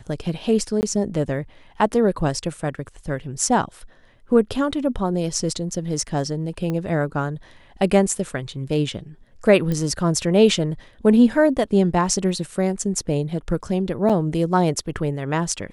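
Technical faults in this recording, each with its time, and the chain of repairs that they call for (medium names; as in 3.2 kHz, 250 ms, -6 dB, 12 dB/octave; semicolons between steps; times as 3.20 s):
0.81–0.83 s: dropout 19 ms
6.70 s: pop -15 dBFS
9.72 s: pop -14 dBFS
14.09–14.10 s: dropout 6.5 ms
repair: de-click; interpolate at 0.81 s, 19 ms; interpolate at 14.09 s, 6.5 ms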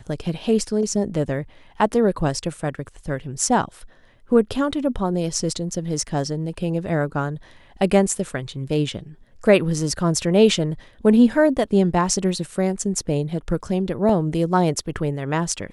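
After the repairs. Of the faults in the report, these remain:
6.70 s: pop
9.72 s: pop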